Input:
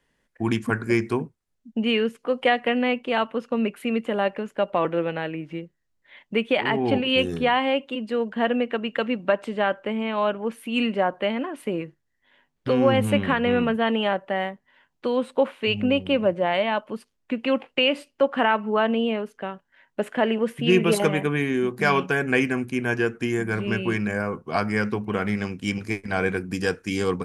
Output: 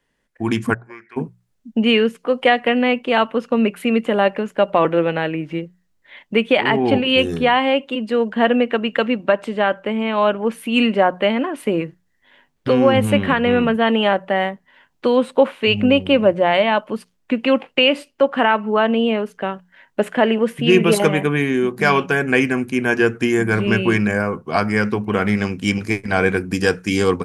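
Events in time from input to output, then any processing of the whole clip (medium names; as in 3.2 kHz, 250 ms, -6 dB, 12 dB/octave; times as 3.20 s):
0.73–1.16 s: band-pass filter 570 Hz -> 2.1 kHz, Q 6.9
whole clip: hum notches 60/120/180 Hz; level rider gain up to 9 dB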